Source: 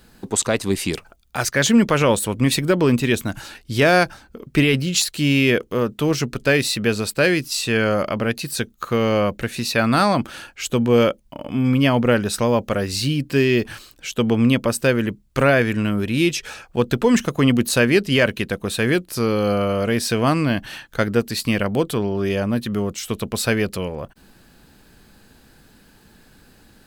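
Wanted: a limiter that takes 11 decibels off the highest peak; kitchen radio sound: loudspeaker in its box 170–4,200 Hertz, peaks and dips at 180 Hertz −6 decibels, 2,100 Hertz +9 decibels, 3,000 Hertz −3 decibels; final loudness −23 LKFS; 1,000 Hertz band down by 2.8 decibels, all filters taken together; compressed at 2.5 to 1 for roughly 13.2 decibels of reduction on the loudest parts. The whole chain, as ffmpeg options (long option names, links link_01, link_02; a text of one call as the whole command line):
ffmpeg -i in.wav -af "equalizer=frequency=1000:width_type=o:gain=-4.5,acompressor=threshold=-32dB:ratio=2.5,alimiter=limit=-23dB:level=0:latency=1,highpass=170,equalizer=frequency=180:width_type=q:width=4:gain=-6,equalizer=frequency=2100:width_type=q:width=4:gain=9,equalizer=frequency=3000:width_type=q:width=4:gain=-3,lowpass=frequency=4200:width=0.5412,lowpass=frequency=4200:width=1.3066,volume=11.5dB" out.wav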